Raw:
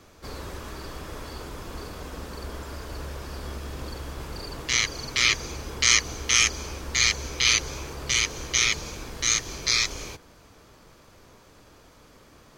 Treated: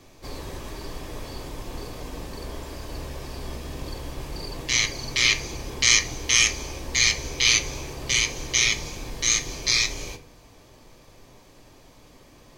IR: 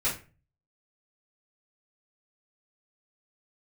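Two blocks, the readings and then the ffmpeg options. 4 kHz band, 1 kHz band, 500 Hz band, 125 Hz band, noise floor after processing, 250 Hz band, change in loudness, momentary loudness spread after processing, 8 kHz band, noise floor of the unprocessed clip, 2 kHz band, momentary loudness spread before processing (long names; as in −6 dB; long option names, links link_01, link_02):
+1.5 dB, −2.0 dB, +1.5 dB, +1.0 dB, −52 dBFS, +2.0 dB, +1.5 dB, 19 LU, +1.5 dB, −54 dBFS, +1.5 dB, 19 LU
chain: -filter_complex "[0:a]equalizer=frequency=1400:width=4.4:gain=-11.5,asplit=2[link_01][link_02];[1:a]atrim=start_sample=2205[link_03];[link_02][link_03]afir=irnorm=-1:irlink=0,volume=-13.5dB[link_04];[link_01][link_04]amix=inputs=2:normalize=0"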